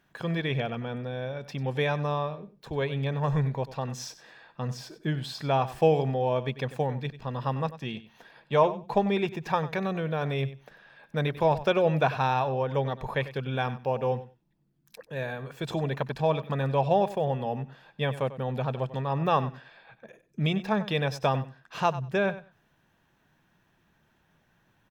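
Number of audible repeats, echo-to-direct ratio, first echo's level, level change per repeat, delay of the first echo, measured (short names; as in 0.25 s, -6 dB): 2, -15.0 dB, -15.0 dB, -16.5 dB, 95 ms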